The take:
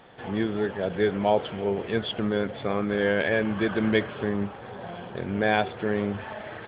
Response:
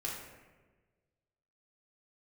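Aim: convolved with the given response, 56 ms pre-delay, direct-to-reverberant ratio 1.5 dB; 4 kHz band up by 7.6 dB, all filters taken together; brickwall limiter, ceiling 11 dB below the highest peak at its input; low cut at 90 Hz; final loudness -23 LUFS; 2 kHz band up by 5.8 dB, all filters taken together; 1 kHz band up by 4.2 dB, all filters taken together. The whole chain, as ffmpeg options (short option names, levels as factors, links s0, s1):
-filter_complex "[0:a]highpass=90,equalizer=f=1000:t=o:g=5,equalizer=f=2000:t=o:g=4,equalizer=f=4000:t=o:g=8,alimiter=limit=0.158:level=0:latency=1,asplit=2[s0][s1];[1:a]atrim=start_sample=2205,adelay=56[s2];[s1][s2]afir=irnorm=-1:irlink=0,volume=0.668[s3];[s0][s3]amix=inputs=2:normalize=0,volume=1.33"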